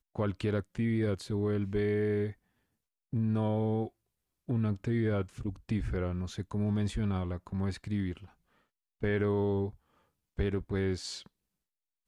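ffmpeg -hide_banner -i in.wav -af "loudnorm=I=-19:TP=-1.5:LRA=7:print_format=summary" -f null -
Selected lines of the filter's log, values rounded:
Input Integrated:    -32.9 LUFS
Input True Peak:     -19.5 dBTP
Input LRA:             2.3 LU
Input Threshold:     -43.4 LUFS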